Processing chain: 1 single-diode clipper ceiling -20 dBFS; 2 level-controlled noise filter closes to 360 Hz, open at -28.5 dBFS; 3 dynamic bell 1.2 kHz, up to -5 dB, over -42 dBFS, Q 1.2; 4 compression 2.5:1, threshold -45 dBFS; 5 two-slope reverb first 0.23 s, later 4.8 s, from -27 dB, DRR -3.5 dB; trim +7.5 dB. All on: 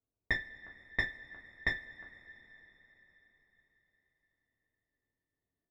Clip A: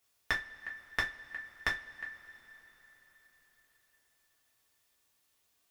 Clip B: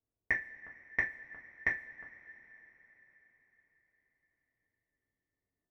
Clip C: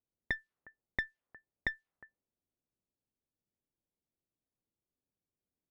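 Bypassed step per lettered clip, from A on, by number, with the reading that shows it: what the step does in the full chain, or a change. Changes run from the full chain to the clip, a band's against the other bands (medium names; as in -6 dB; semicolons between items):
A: 2, 1 kHz band +9.0 dB; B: 1, 125 Hz band -6.5 dB; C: 5, momentary loudness spread change -14 LU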